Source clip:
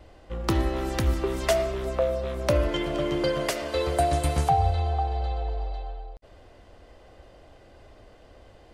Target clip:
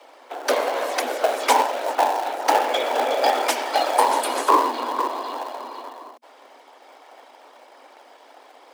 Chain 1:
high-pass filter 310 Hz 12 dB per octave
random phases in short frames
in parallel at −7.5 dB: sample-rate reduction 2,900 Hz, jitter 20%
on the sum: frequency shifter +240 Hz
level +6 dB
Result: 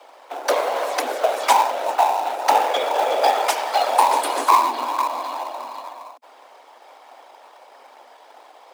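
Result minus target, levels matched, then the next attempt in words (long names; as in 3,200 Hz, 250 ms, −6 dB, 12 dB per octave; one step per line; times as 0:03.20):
sample-rate reduction: distortion −25 dB
high-pass filter 310 Hz 12 dB per octave
random phases in short frames
in parallel at −7.5 dB: sample-rate reduction 970 Hz, jitter 20%
on the sum: frequency shifter +240 Hz
level +6 dB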